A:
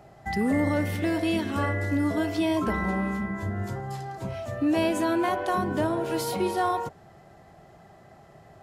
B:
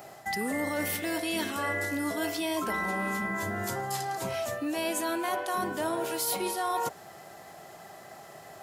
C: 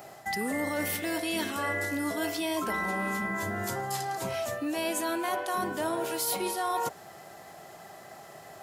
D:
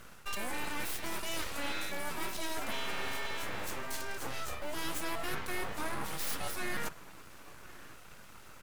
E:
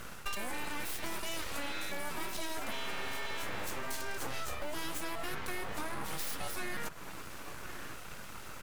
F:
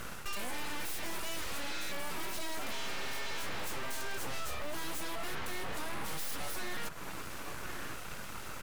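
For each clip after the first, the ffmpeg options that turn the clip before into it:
ffmpeg -i in.wav -af "highpass=frequency=530:poles=1,aemphasis=mode=production:type=50kf,areverse,acompressor=threshold=-35dB:ratio=6,areverse,volume=7dB" out.wav
ffmpeg -i in.wav -af anull out.wav
ffmpeg -i in.wav -filter_complex "[0:a]acrossover=split=250|6100[link_01][link_02][link_03];[link_01]acrusher=samples=33:mix=1:aa=0.000001[link_04];[link_04][link_02][link_03]amix=inputs=3:normalize=0,asplit=2[link_05][link_06];[link_06]adelay=1050,volume=-18dB,highshelf=frequency=4000:gain=-23.6[link_07];[link_05][link_07]amix=inputs=2:normalize=0,aeval=exprs='abs(val(0))':channel_layout=same,volume=-3dB" out.wav
ffmpeg -i in.wav -af "acompressor=threshold=-39dB:ratio=10,volume=7dB" out.wav
ffmpeg -i in.wav -af "volume=34dB,asoftclip=hard,volume=-34dB,volume=3dB" out.wav

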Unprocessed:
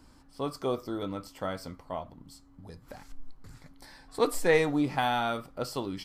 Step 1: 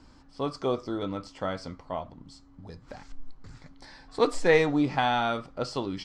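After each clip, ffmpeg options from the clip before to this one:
ffmpeg -i in.wav -af "lowpass=frequency=6900:width=0.5412,lowpass=frequency=6900:width=1.3066,volume=2.5dB" out.wav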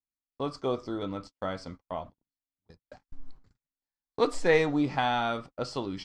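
ffmpeg -i in.wav -af "agate=range=-50dB:threshold=-40dB:ratio=16:detection=peak,volume=-2dB" out.wav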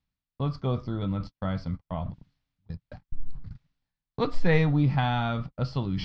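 ffmpeg -i in.wav -af "lowpass=frequency=4700:width=0.5412,lowpass=frequency=4700:width=1.3066,lowshelf=frequency=230:width_type=q:width=1.5:gain=12.5,areverse,acompressor=mode=upward:threshold=-26dB:ratio=2.5,areverse,volume=-1dB" out.wav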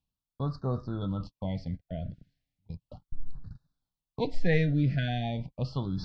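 ffmpeg -i in.wav -af "afftfilt=real='re*(1-between(b*sr/1024,970*pow(2600/970,0.5+0.5*sin(2*PI*0.36*pts/sr))/1.41,970*pow(2600/970,0.5+0.5*sin(2*PI*0.36*pts/sr))*1.41))':imag='im*(1-between(b*sr/1024,970*pow(2600/970,0.5+0.5*sin(2*PI*0.36*pts/sr))/1.41,970*pow(2600/970,0.5+0.5*sin(2*PI*0.36*pts/sr))*1.41))':win_size=1024:overlap=0.75,volume=-3dB" out.wav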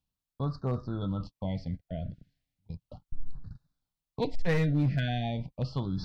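ffmpeg -i in.wav -af "volume=21dB,asoftclip=hard,volume=-21dB" out.wav

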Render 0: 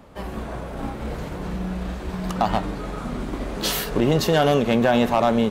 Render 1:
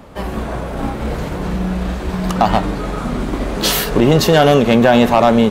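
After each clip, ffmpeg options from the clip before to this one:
ffmpeg -i in.wav -af "acontrast=48,volume=2.5dB" out.wav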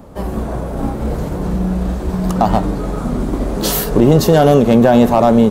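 ffmpeg -i in.wav -af "equalizer=frequency=2500:width=0.56:gain=-11,volume=2.5dB" out.wav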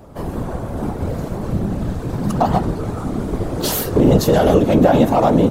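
ffmpeg -i in.wav -af "afftfilt=real='hypot(re,im)*cos(2*PI*random(0))':imag='hypot(re,im)*sin(2*PI*random(1))':win_size=512:overlap=0.75,volume=3dB" out.wav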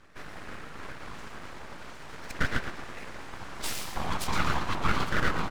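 ffmpeg -i in.wav -filter_complex "[0:a]highpass=710,lowpass=6100,asplit=2[link_01][link_02];[link_02]aecho=0:1:115|230|345|460:0.355|0.142|0.0568|0.0227[link_03];[link_01][link_03]amix=inputs=2:normalize=0,aeval=exprs='abs(val(0))':channel_layout=same,volume=-5dB" out.wav

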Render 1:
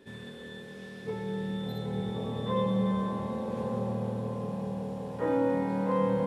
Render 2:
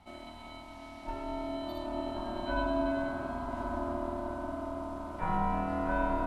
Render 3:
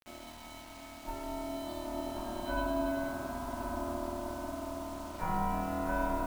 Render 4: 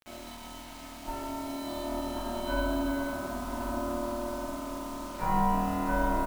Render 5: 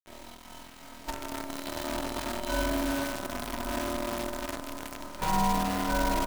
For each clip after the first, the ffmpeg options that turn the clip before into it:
ffmpeg -i in.wav -af "aeval=exprs='val(0)*sin(2*PI*470*n/s)':channel_layout=same" out.wav
ffmpeg -i in.wav -af "acrusher=bits=7:mix=0:aa=0.000001,volume=-2dB" out.wav
ffmpeg -i in.wav -filter_complex "[0:a]asplit=2[link_01][link_02];[link_02]adelay=46,volume=-3dB[link_03];[link_01][link_03]amix=inputs=2:normalize=0,volume=3dB" out.wav
ffmpeg -i in.wav -af "acrusher=bits=6:dc=4:mix=0:aa=0.000001" out.wav

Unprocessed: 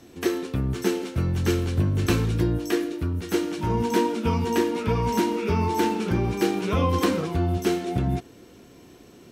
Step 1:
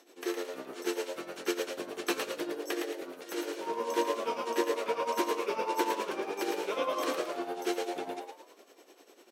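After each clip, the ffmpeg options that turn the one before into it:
ffmpeg -i in.wav -filter_complex "[0:a]tremolo=f=10:d=0.73,highpass=frequency=360:width=0.5412,highpass=frequency=360:width=1.3066,asplit=6[link_01][link_02][link_03][link_04][link_05][link_06];[link_02]adelay=111,afreqshift=93,volume=-4.5dB[link_07];[link_03]adelay=222,afreqshift=186,volume=-13.1dB[link_08];[link_04]adelay=333,afreqshift=279,volume=-21.8dB[link_09];[link_05]adelay=444,afreqshift=372,volume=-30.4dB[link_10];[link_06]adelay=555,afreqshift=465,volume=-39dB[link_11];[link_01][link_07][link_08][link_09][link_10][link_11]amix=inputs=6:normalize=0,volume=-3dB" out.wav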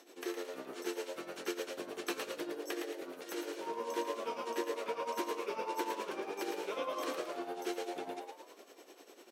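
ffmpeg -i in.wav -af "acompressor=threshold=-48dB:ratio=1.5,volume=1dB" out.wav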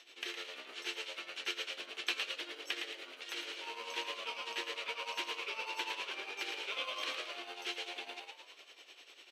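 ffmpeg -i in.wav -filter_complex "[0:a]asplit=2[link_01][link_02];[link_02]acrusher=samples=25:mix=1:aa=0.000001,volume=-9.5dB[link_03];[link_01][link_03]amix=inputs=2:normalize=0,bandpass=frequency=3000:width_type=q:width=2.2:csg=0,volume=10.5dB" out.wav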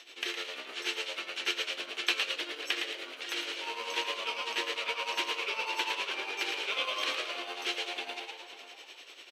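ffmpeg -i in.wav -filter_complex "[0:a]asplit=2[link_01][link_02];[link_02]adelay=542.3,volume=-12dB,highshelf=frequency=4000:gain=-12.2[link_03];[link_01][link_03]amix=inputs=2:normalize=0,volume=6.5dB" out.wav

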